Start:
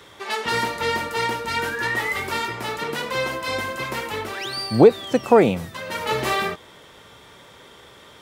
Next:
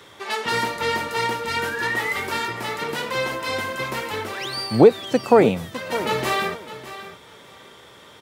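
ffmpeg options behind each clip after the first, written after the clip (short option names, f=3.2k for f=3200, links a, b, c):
-af "highpass=75,aecho=1:1:607|1214:0.2|0.0359"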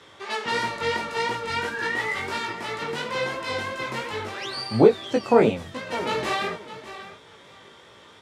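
-af "lowpass=8k,flanger=delay=18:depth=3.8:speed=2.9"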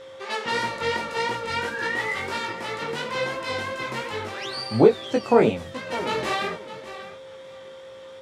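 -af "aeval=exprs='val(0)+0.01*sin(2*PI*530*n/s)':c=same"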